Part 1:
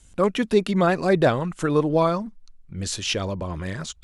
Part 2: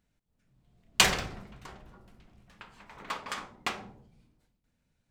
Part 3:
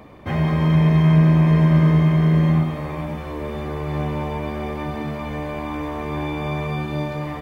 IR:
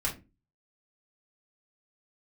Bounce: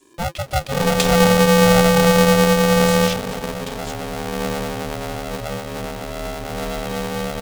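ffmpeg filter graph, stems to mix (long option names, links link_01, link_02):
-filter_complex "[0:a]volume=-2.5dB[link_01];[1:a]volume=0dB[link_02];[2:a]adelay=450,volume=1dB[link_03];[link_01][link_02][link_03]amix=inputs=3:normalize=0,asuperstop=centerf=1200:order=20:qfactor=0.59,aeval=exprs='val(0)*sgn(sin(2*PI*340*n/s))':channel_layout=same"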